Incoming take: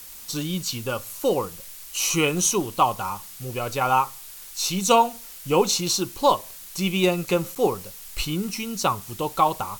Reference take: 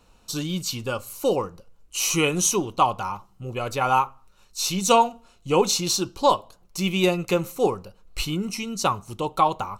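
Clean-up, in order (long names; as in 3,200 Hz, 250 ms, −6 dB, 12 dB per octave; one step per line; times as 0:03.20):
repair the gap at 0:07.55, 7.2 ms
noise reduction from a noise print 13 dB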